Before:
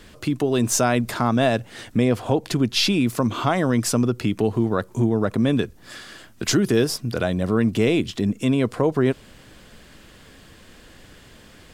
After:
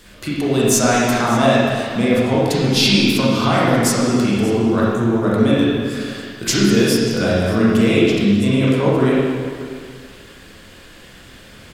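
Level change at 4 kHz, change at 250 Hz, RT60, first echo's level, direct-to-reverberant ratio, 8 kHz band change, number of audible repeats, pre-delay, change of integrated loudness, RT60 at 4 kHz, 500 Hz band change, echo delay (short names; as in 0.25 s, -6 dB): +7.0 dB, +6.0 dB, 2.0 s, -17.0 dB, -7.5 dB, +5.5 dB, 1, 25 ms, +5.5 dB, 2.0 s, +5.5 dB, 0.584 s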